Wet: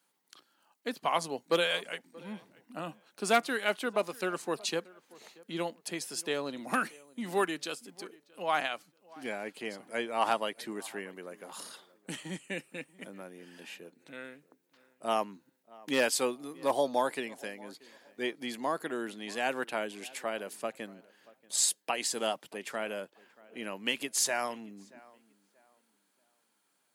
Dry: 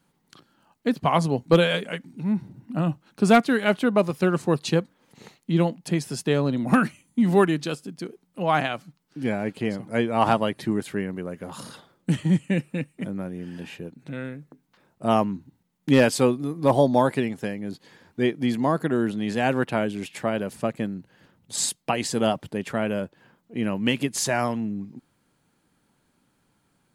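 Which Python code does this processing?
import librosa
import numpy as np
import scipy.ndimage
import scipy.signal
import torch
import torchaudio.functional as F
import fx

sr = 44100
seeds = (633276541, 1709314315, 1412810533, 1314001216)

p1 = scipy.signal.sosfilt(scipy.signal.butter(2, 310.0, 'highpass', fs=sr, output='sos'), x)
p2 = fx.tilt_eq(p1, sr, slope=2.0)
p3 = p2 + fx.echo_tape(p2, sr, ms=632, feedback_pct=31, wet_db=-21.5, lp_hz=1900.0, drive_db=7.0, wow_cents=13, dry=0)
y = F.gain(torch.from_numpy(p3), -7.0).numpy()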